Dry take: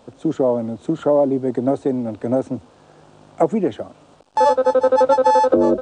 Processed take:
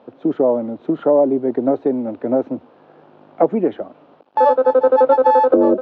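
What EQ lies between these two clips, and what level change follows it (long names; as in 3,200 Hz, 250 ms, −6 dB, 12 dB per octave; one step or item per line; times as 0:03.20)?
band-pass filter 280–3,600 Hz
high-frequency loss of the air 230 metres
low-shelf EQ 390 Hz +6 dB
+1.0 dB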